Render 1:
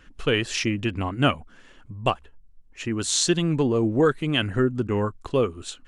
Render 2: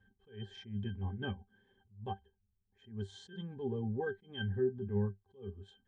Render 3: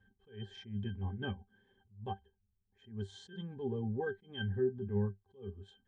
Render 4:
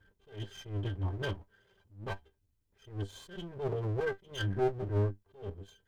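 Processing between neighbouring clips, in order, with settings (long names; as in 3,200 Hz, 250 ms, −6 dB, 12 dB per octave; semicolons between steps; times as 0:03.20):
resonances in every octave G, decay 0.12 s; level that may rise only so fast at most 160 dB per second; level −3.5 dB
no processing that can be heard
lower of the sound and its delayed copy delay 2 ms; level +4.5 dB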